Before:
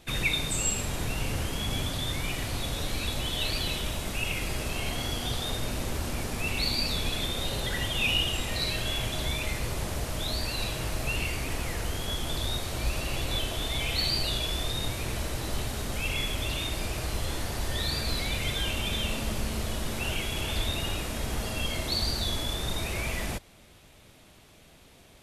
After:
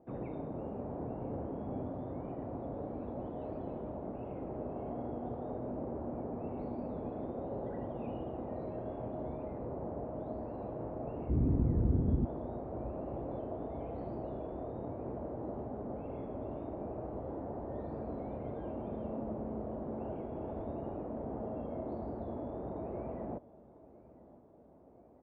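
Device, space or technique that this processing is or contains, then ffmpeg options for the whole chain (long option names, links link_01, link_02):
under water: -filter_complex "[0:a]highpass=52,lowpass=frequency=720:width=0.5412,lowpass=frequency=720:width=1.3066,aemphasis=mode=production:type=riaa,equalizer=frequency=260:width_type=o:width=0.56:gain=4.5,asplit=3[link_01][link_02][link_03];[link_01]afade=type=out:start_time=11.28:duration=0.02[link_04];[link_02]asubboost=boost=11.5:cutoff=190,afade=type=in:start_time=11.28:duration=0.02,afade=type=out:start_time=12.24:duration=0.02[link_05];[link_03]afade=type=in:start_time=12.24:duration=0.02[link_06];[link_04][link_05][link_06]amix=inputs=3:normalize=0,aecho=1:1:1003|2006|3009|4012:0.0891|0.0481|0.026|0.014,volume=1.5dB"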